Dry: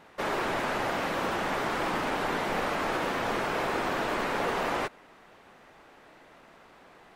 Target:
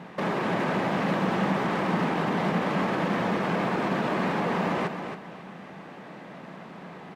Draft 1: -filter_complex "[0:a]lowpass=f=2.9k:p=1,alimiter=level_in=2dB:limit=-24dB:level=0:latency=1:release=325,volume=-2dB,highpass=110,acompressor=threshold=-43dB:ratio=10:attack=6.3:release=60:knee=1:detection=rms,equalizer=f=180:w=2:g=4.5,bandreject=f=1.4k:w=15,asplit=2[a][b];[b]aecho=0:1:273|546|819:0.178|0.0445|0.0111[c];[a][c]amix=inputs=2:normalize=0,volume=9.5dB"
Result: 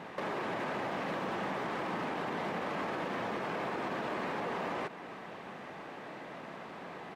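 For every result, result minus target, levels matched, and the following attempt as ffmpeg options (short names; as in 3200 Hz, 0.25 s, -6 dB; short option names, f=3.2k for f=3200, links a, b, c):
compressor: peak gain reduction +7 dB; echo-to-direct -7.5 dB; 250 Hz band -2.5 dB
-filter_complex "[0:a]lowpass=f=2.9k:p=1,alimiter=level_in=2dB:limit=-24dB:level=0:latency=1:release=325,volume=-2dB,highpass=110,acompressor=threshold=-35dB:ratio=10:attack=6.3:release=60:knee=1:detection=rms,equalizer=f=180:w=2:g=4.5,bandreject=f=1.4k:w=15,asplit=2[a][b];[b]aecho=0:1:273|546|819:0.178|0.0445|0.0111[c];[a][c]amix=inputs=2:normalize=0,volume=9.5dB"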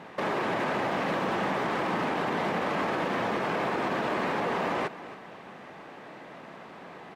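echo-to-direct -7.5 dB; 250 Hz band -3.5 dB
-filter_complex "[0:a]lowpass=f=2.9k:p=1,alimiter=level_in=2dB:limit=-24dB:level=0:latency=1:release=325,volume=-2dB,highpass=110,acompressor=threshold=-35dB:ratio=10:attack=6.3:release=60:knee=1:detection=rms,equalizer=f=180:w=2:g=4.5,bandreject=f=1.4k:w=15,asplit=2[a][b];[b]aecho=0:1:273|546|819:0.422|0.105|0.0264[c];[a][c]amix=inputs=2:normalize=0,volume=9.5dB"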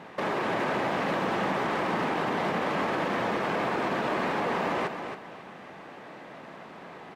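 250 Hz band -3.5 dB
-filter_complex "[0:a]lowpass=f=2.9k:p=1,alimiter=level_in=2dB:limit=-24dB:level=0:latency=1:release=325,volume=-2dB,highpass=110,acompressor=threshold=-35dB:ratio=10:attack=6.3:release=60:knee=1:detection=rms,equalizer=f=180:w=2:g=14.5,bandreject=f=1.4k:w=15,asplit=2[a][b];[b]aecho=0:1:273|546|819:0.422|0.105|0.0264[c];[a][c]amix=inputs=2:normalize=0,volume=9.5dB"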